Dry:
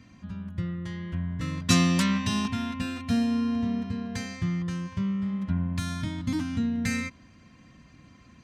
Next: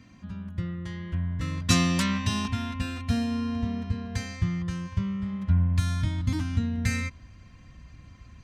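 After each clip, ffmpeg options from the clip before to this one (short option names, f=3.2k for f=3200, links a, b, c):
-af "asubboost=boost=6.5:cutoff=85"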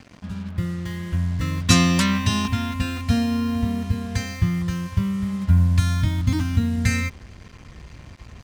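-af "acrusher=bits=7:mix=0:aa=0.5,volume=6dB"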